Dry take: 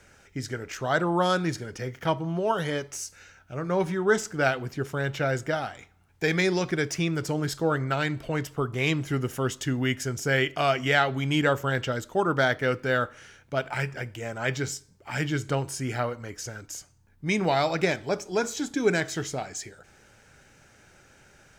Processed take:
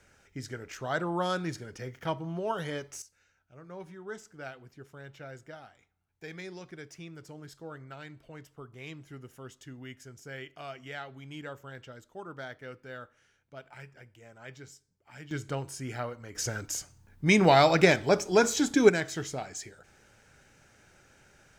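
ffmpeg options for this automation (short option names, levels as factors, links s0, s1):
-af "asetnsamples=n=441:p=0,asendcmd='3.02 volume volume -18.5dB;15.31 volume volume -7dB;16.35 volume volume 4dB;18.89 volume volume -4dB',volume=0.473"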